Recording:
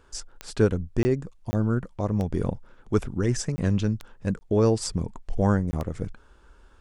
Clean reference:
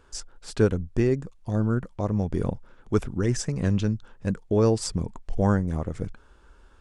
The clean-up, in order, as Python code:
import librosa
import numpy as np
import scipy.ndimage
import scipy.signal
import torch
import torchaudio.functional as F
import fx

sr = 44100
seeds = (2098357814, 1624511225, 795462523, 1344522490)

y = fx.fix_declick_ar(x, sr, threshold=10.0)
y = fx.fix_interpolate(y, sr, at_s=(1.03, 1.51, 3.56, 4.39, 5.71), length_ms=20.0)